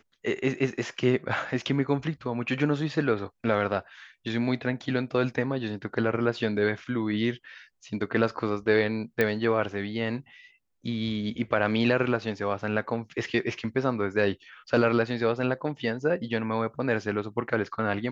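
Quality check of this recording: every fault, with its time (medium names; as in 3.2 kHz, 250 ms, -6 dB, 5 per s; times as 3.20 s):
9.21 s: pop -11 dBFS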